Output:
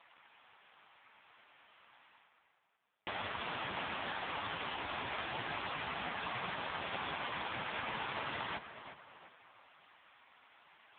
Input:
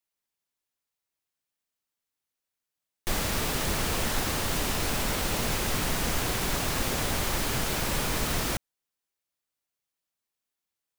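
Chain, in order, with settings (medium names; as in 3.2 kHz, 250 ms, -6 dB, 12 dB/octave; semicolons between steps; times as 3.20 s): level-controlled noise filter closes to 2.9 kHz, open at -24.5 dBFS; resonant low shelf 580 Hz -7.5 dB, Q 1.5; reverse; upward compressor, threshold -46 dBFS; reverse; peak limiter -22 dBFS, peak gain reduction 5 dB; compression 10:1, threshold -40 dBFS, peak gain reduction 12 dB; on a send: tape echo 353 ms, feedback 48%, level -10 dB, low-pass 2.9 kHz; on the sum: trim +10.5 dB; AMR-NB 5.15 kbps 8 kHz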